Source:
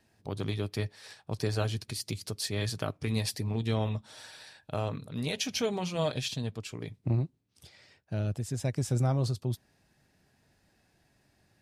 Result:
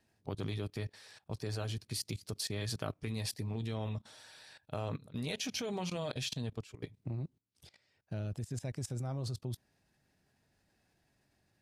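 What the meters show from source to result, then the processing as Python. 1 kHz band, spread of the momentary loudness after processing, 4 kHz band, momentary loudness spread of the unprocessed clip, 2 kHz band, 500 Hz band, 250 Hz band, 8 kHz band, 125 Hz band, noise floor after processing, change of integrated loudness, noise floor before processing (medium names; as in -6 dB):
-7.0 dB, 8 LU, -5.0 dB, 10 LU, -6.0 dB, -7.5 dB, -6.5 dB, -4.5 dB, -7.5 dB, -77 dBFS, -6.5 dB, -71 dBFS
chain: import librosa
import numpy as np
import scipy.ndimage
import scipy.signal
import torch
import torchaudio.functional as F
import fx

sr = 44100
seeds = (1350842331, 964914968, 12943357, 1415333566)

y = fx.level_steps(x, sr, step_db=19)
y = F.gain(torch.from_numpy(y), 1.0).numpy()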